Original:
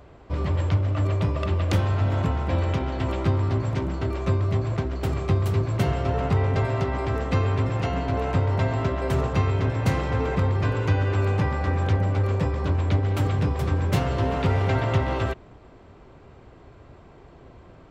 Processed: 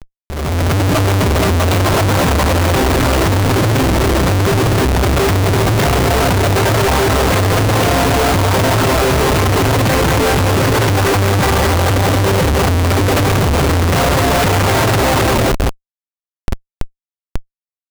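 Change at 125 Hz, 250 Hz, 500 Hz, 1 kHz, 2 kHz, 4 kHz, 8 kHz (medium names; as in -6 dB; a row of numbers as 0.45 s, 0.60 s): +8.0 dB, +12.5 dB, +13.5 dB, +14.5 dB, +16.5 dB, +20.0 dB, no reading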